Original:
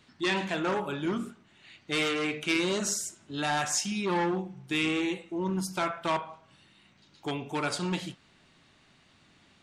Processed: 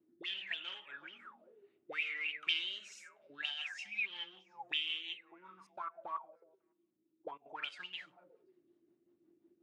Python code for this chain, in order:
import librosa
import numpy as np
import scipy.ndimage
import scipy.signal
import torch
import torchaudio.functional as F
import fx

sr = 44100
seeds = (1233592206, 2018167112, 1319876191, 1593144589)

y = fx.rotary_switch(x, sr, hz=1.1, then_hz=5.5, switch_at_s=2.53)
y = fx.level_steps(y, sr, step_db=18, at=(5.38, 7.46))
y = fx.echo_stepped(y, sr, ms=184, hz=230.0, octaves=1.4, feedback_pct=70, wet_db=-11.5)
y = fx.auto_wah(y, sr, base_hz=320.0, top_hz=3100.0, q=20.0, full_db=-28.0, direction='up')
y = y * 10.0 ** (10.5 / 20.0)